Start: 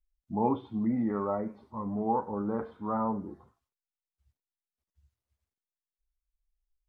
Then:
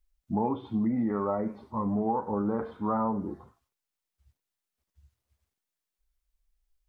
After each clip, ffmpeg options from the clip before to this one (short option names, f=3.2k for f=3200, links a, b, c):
-af "acompressor=threshold=-31dB:ratio=6,volume=6.5dB"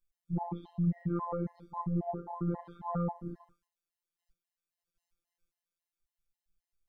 -af "afreqshift=-62,afftfilt=real='hypot(re,im)*cos(PI*b)':imag='0':win_size=1024:overlap=0.75,afftfilt=real='re*gt(sin(2*PI*3.7*pts/sr)*(1-2*mod(floor(b*sr/1024/540),2)),0)':imag='im*gt(sin(2*PI*3.7*pts/sr)*(1-2*mod(floor(b*sr/1024/540),2)),0)':win_size=1024:overlap=0.75"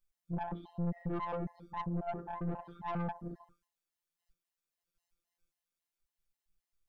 -af "aeval=exprs='(tanh(50.1*val(0)+0.5)-tanh(0.5))/50.1':c=same,volume=2.5dB"